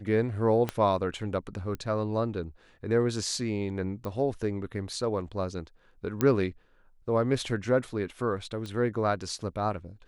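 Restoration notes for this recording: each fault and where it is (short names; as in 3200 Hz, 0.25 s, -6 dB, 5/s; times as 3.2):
0.69 pop -15 dBFS
1.75 pop -24 dBFS
4.05 pop -24 dBFS
6.21 pop -12 dBFS
8.66 pop -25 dBFS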